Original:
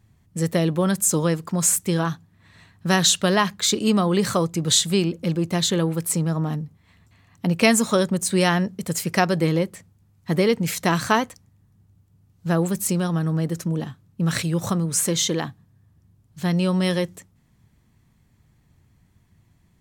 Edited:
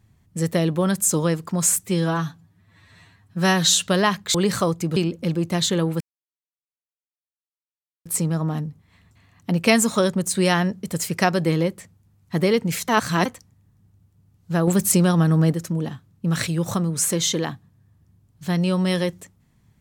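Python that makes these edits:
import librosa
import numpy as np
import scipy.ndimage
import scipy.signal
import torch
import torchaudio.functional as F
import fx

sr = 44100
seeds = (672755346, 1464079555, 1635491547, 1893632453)

y = fx.edit(x, sr, fx.stretch_span(start_s=1.83, length_s=1.33, factor=1.5),
    fx.cut(start_s=3.68, length_s=0.4),
    fx.cut(start_s=4.7, length_s=0.27),
    fx.insert_silence(at_s=6.01, length_s=2.05),
    fx.reverse_span(start_s=10.84, length_s=0.37),
    fx.clip_gain(start_s=12.63, length_s=0.86, db=5.5), tone=tone)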